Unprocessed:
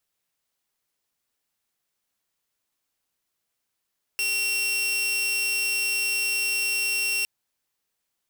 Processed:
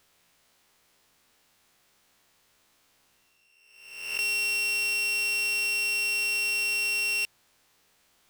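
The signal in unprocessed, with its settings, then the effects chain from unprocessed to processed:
tone saw 2,730 Hz −20.5 dBFS 3.06 s
peak hold with a rise ahead of every peak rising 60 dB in 0.97 s
high-shelf EQ 7,100 Hz −9 dB
reversed playback
upward compression, threshold −52 dBFS
reversed playback

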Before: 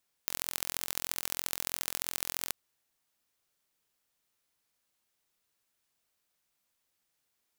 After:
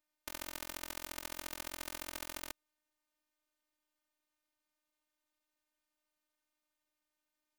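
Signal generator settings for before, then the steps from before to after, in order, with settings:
impulse train 43.1 per second, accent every 3, −3.5 dBFS 2.25 s
high-shelf EQ 3,000 Hz −9.5 dB
phases set to zero 304 Hz

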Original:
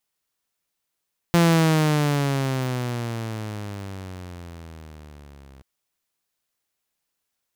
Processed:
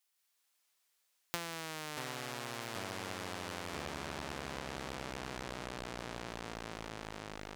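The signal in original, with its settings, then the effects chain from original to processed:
pitch glide with a swell saw, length 4.28 s, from 172 Hz, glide −16.5 semitones, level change −31.5 dB, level −11 dB
high-pass filter 1,400 Hz 6 dB per octave
delay with pitch and tempo change per echo 183 ms, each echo −5 semitones, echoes 3
downward compressor 10 to 1, threshold −35 dBFS

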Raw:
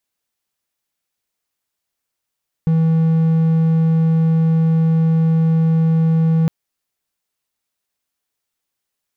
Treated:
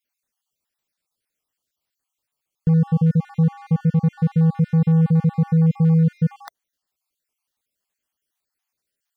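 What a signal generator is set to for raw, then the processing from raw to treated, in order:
tone triangle 162 Hz −9.5 dBFS 3.81 s
time-frequency cells dropped at random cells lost 46%

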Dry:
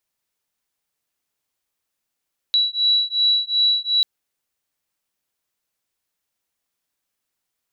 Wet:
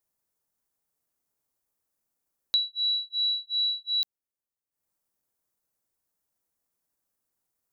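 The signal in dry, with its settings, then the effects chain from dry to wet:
two tones that beat 3,920 Hz, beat 2.7 Hz, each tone −19 dBFS 1.49 s
transient designer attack +6 dB, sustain −12 dB
parametric band 3,000 Hz −12 dB 1.9 octaves

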